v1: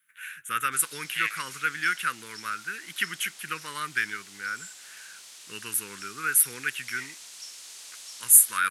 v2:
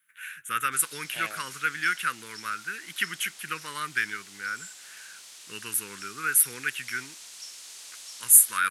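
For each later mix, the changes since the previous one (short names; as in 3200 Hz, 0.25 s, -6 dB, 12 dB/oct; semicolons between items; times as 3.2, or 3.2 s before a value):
second voice: remove resonant high-pass 2000 Hz, resonance Q 7.7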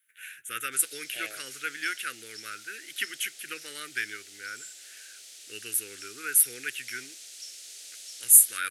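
master: add fixed phaser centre 420 Hz, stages 4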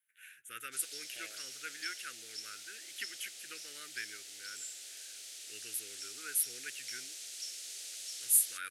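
first voice -11.0 dB; second voice -11.0 dB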